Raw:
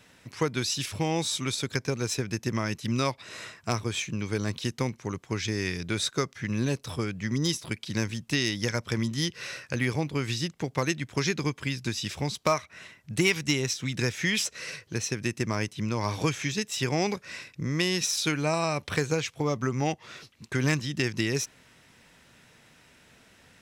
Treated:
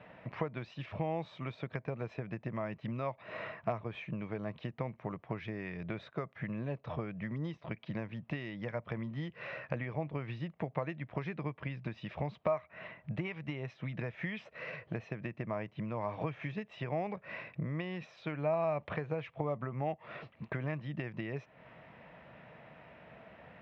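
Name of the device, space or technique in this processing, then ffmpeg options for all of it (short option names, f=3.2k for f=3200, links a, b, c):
bass amplifier: -af "acompressor=threshold=-39dB:ratio=5,highpass=78,equalizer=f=96:t=q:w=4:g=-8,equalizer=f=260:t=q:w=4:g=-7,equalizer=f=380:t=q:w=4:g=-6,equalizer=f=640:t=q:w=4:g=8,equalizer=f=1.5k:t=q:w=4:g=-7,equalizer=f=2.1k:t=q:w=4:g=-3,lowpass=f=2.2k:w=0.5412,lowpass=f=2.2k:w=1.3066,volume=6dB"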